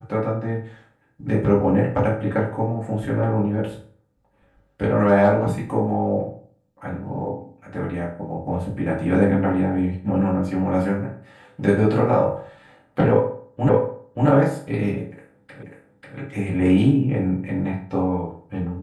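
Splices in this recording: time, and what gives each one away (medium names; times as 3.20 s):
13.69 s: repeat of the last 0.58 s
15.63 s: repeat of the last 0.54 s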